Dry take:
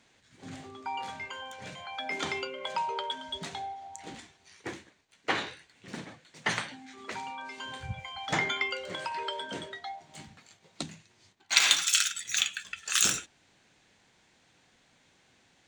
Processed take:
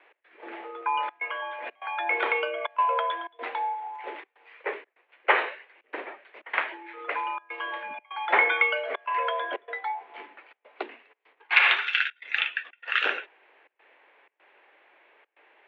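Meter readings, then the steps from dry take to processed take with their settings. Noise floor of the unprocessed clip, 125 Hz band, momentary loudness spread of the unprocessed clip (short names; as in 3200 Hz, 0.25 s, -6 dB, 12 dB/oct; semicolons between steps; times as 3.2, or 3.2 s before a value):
-66 dBFS, under -35 dB, 20 LU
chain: step gate "x.xxxxxxx.xxx" 124 bpm -24 dB; mistuned SSB +76 Hz 330–2600 Hz; gain +9 dB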